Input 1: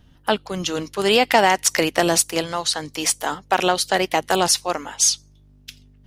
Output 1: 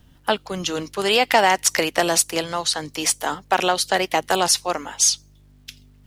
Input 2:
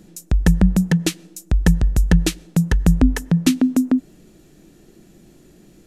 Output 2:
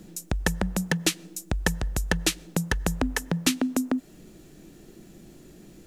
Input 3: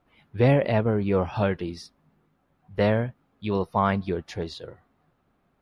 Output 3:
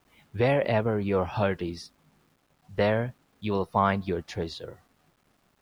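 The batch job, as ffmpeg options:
ffmpeg -i in.wav -filter_complex "[0:a]acrossover=split=460[link_01][link_02];[link_01]acompressor=threshold=-26dB:ratio=6[link_03];[link_03][link_02]amix=inputs=2:normalize=0,acrusher=bits=10:mix=0:aa=0.000001" out.wav

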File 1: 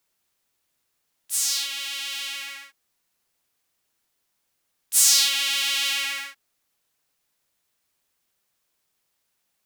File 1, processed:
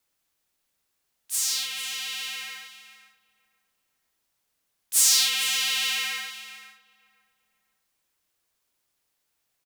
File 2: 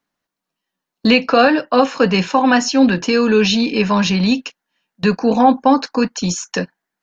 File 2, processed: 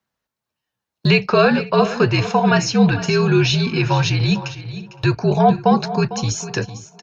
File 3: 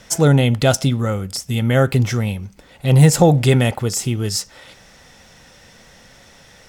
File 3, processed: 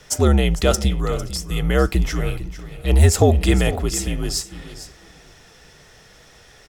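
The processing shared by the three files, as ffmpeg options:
ffmpeg -i in.wav -filter_complex "[0:a]asplit=2[link_01][link_02];[link_02]aecho=0:1:452:0.2[link_03];[link_01][link_03]amix=inputs=2:normalize=0,afreqshift=-67,asplit=2[link_04][link_05];[link_05]adelay=515,lowpass=frequency=1700:poles=1,volume=-19dB,asplit=2[link_06][link_07];[link_07]adelay=515,lowpass=frequency=1700:poles=1,volume=0.36,asplit=2[link_08][link_09];[link_09]adelay=515,lowpass=frequency=1700:poles=1,volume=0.36[link_10];[link_06][link_08][link_10]amix=inputs=3:normalize=0[link_11];[link_04][link_11]amix=inputs=2:normalize=0,volume=-2dB" out.wav

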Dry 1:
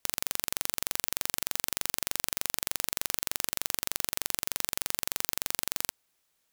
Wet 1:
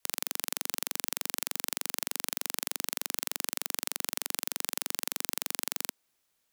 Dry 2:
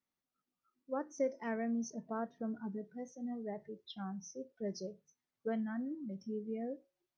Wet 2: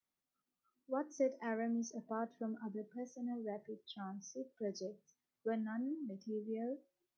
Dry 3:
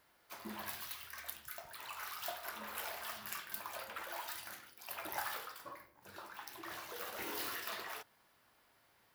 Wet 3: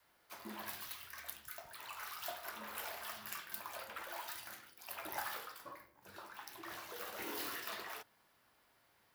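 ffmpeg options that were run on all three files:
ffmpeg -i in.wav -filter_complex "[0:a]adynamicequalizer=threshold=0.00224:dfrequency=260:dqfactor=1.3:tfrequency=260:tqfactor=1.3:attack=5:release=100:ratio=0.375:range=2:mode=boostabove:tftype=bell,acrossover=split=220|4800[link_01][link_02][link_03];[link_01]acompressor=threshold=-58dB:ratio=6[link_04];[link_04][link_02][link_03]amix=inputs=3:normalize=0,volume=-1.5dB" out.wav

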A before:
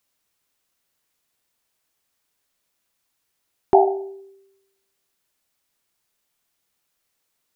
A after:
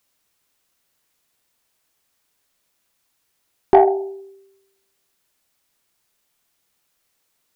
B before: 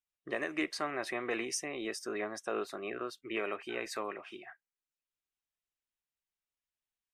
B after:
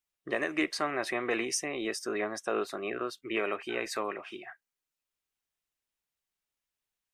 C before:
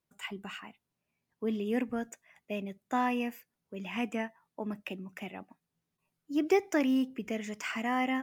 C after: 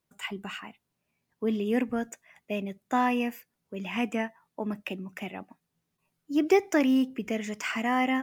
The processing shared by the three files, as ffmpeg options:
ffmpeg -i in.wav -af "acontrast=35,volume=-1dB" out.wav

